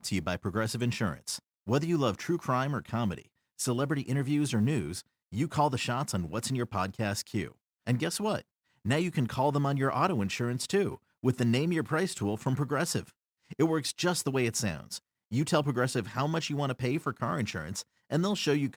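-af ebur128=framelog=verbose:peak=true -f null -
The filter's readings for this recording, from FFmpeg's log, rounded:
Integrated loudness:
  I:         -30.7 LUFS
  Threshold: -41.0 LUFS
Loudness range:
  LRA:         2.2 LU
  Threshold: -50.9 LUFS
  LRA low:   -31.8 LUFS
  LRA high:  -29.6 LUFS
True peak:
  Peak:      -13.2 dBFS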